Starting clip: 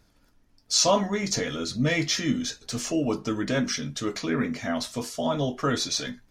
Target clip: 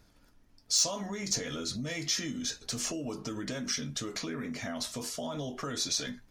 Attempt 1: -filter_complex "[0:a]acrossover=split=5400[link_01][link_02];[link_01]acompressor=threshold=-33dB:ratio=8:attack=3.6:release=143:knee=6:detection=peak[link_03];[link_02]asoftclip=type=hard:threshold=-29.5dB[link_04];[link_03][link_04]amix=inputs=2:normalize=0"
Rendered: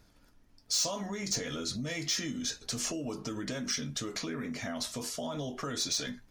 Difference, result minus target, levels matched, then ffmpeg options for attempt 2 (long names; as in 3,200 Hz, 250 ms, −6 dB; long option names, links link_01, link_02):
hard clipping: distortion +12 dB
-filter_complex "[0:a]acrossover=split=5400[link_01][link_02];[link_01]acompressor=threshold=-33dB:ratio=8:attack=3.6:release=143:knee=6:detection=peak[link_03];[link_02]asoftclip=type=hard:threshold=-21dB[link_04];[link_03][link_04]amix=inputs=2:normalize=0"